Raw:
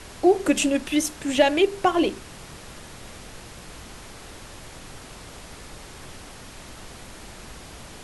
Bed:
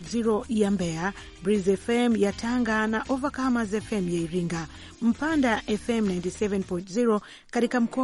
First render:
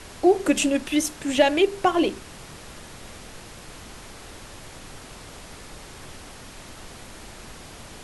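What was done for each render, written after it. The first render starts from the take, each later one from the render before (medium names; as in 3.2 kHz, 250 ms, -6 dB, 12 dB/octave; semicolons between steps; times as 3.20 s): de-hum 60 Hz, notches 3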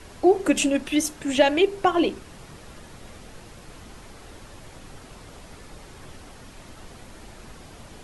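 noise reduction 6 dB, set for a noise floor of -43 dBFS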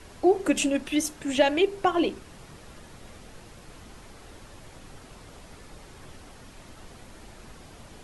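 trim -3 dB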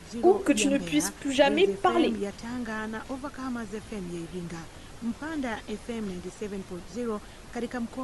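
add bed -9 dB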